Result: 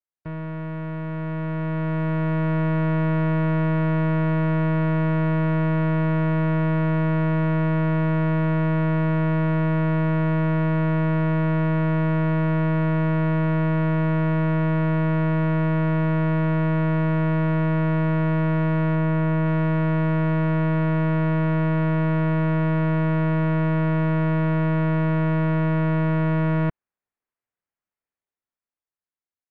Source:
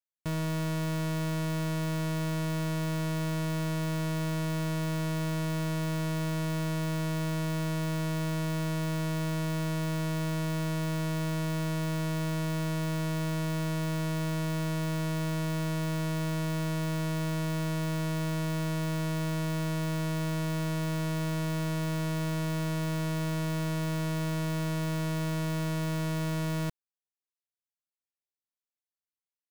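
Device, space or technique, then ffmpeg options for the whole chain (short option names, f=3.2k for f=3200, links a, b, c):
action camera in a waterproof case: -filter_complex "[0:a]asettb=1/sr,asplit=3[a][b][c];[a]atrim=end=18.954[d];[b]atrim=start=18.95:end=19.46,asetpts=PTS-STARTPTS,afade=t=in:d=0.004:c=qsin,afade=t=out:st=0.506:d=0.004:c=qsin,highshelf=f=5.8k:g=-9[e];[c]atrim=start=19.456[f];[d][e]acrossfade=d=0.004:c1=hsin:c2=qsin[g];[g][f]acrossfade=d=0.004:c1=qsin:c2=hsin,lowpass=f=2.2k:w=0.5412,lowpass=f=2.2k:w=1.3066,dynaudnorm=f=520:g=7:m=10dB" -ar 16000 -c:a aac -b:a 64k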